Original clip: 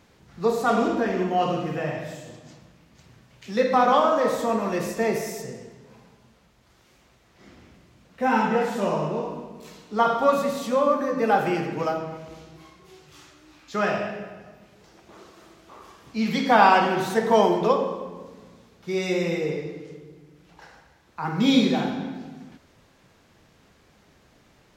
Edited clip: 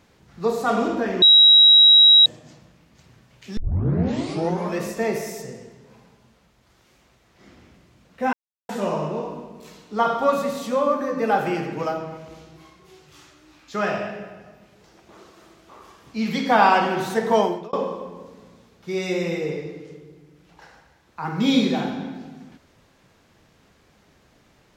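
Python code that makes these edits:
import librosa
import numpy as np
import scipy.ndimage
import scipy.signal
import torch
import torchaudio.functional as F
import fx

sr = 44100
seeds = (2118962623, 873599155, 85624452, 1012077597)

y = fx.edit(x, sr, fx.bleep(start_s=1.22, length_s=1.04, hz=3850.0, db=-8.0),
    fx.tape_start(start_s=3.57, length_s=1.21),
    fx.silence(start_s=8.33, length_s=0.36),
    fx.fade_out_span(start_s=17.37, length_s=0.36), tone=tone)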